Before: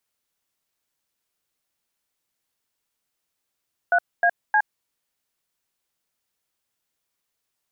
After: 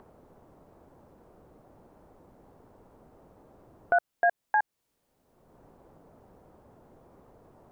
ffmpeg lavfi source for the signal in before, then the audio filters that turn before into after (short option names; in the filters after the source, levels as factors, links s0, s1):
-f lavfi -i "aevalsrc='0.133*clip(min(mod(t,0.31),0.066-mod(t,0.31))/0.002,0,1)*(eq(floor(t/0.31),0)*(sin(2*PI*697*mod(t,0.31))+sin(2*PI*1477*mod(t,0.31)))+eq(floor(t/0.31),1)*(sin(2*PI*697*mod(t,0.31))+sin(2*PI*1633*mod(t,0.31)))+eq(floor(t/0.31),2)*(sin(2*PI*852*mod(t,0.31))+sin(2*PI*1633*mod(t,0.31))))':d=0.93:s=44100"
-filter_complex "[0:a]acrossover=split=850[s0][s1];[s0]acompressor=mode=upward:threshold=0.0447:ratio=2.5[s2];[s1]alimiter=limit=0.075:level=0:latency=1:release=261[s3];[s2][s3]amix=inputs=2:normalize=0"